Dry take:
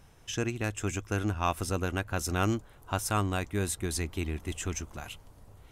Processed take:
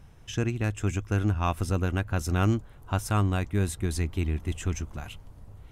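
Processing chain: tone controls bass +7 dB, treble -4 dB

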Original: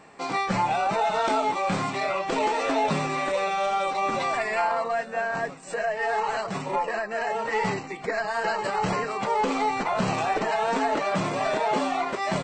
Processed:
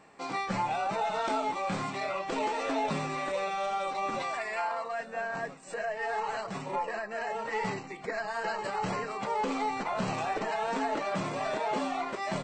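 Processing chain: 4.22–5.00 s: bass shelf 320 Hz -10 dB; on a send: reverberation RT60 0.40 s, pre-delay 4 ms, DRR 18 dB; on the sum: trim -6.5 dB

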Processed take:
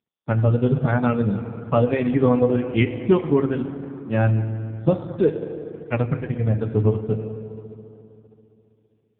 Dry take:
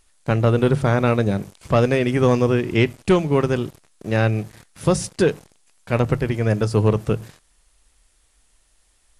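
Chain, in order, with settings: expander on every frequency bin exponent 2; in parallel at +2 dB: compression 16:1, threshold -26 dBFS, peak gain reduction 14 dB; on the sum: FDN reverb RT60 3.1 s, high-frequency decay 0.45×, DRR 8 dB; AMR-NB 5.15 kbps 8 kHz

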